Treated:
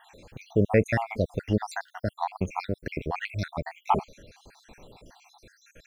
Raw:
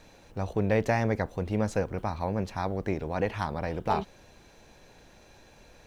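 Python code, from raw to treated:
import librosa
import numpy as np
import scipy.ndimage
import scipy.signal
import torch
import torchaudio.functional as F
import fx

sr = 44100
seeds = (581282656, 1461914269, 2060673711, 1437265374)

y = fx.spec_dropout(x, sr, seeds[0], share_pct=68)
y = fx.dynamic_eq(y, sr, hz=3000.0, q=1.6, threshold_db=-60.0, ratio=4.0, max_db=6, at=(1.15, 3.26))
y = F.gain(torch.from_numpy(y), 6.0).numpy()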